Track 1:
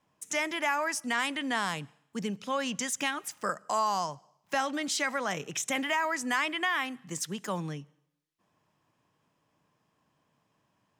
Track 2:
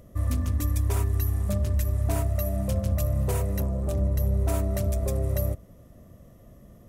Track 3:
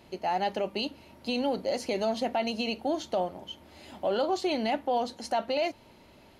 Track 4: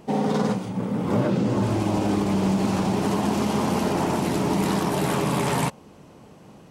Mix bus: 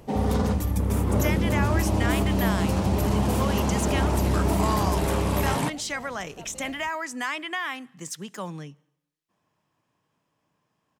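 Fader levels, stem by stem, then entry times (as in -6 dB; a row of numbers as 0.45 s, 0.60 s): -1.0 dB, -1.0 dB, -18.5 dB, -3.5 dB; 0.90 s, 0.00 s, 1.05 s, 0.00 s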